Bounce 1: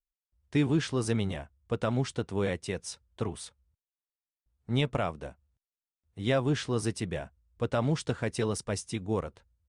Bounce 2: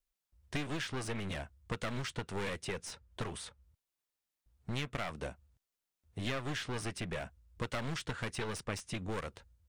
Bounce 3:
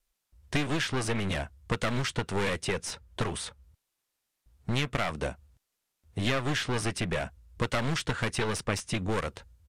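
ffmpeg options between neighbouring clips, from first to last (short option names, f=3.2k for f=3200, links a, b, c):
-filter_complex "[0:a]aeval=exprs='clip(val(0),-1,0.0168)':c=same,acrossover=split=1400|2900[a][b][c];[a]acompressor=threshold=-43dB:ratio=4[d];[b]acompressor=threshold=-45dB:ratio=4[e];[c]acompressor=threshold=-53dB:ratio=4[f];[d][e][f]amix=inputs=3:normalize=0,volume=5.5dB"
-af "aresample=32000,aresample=44100,volume=8.5dB"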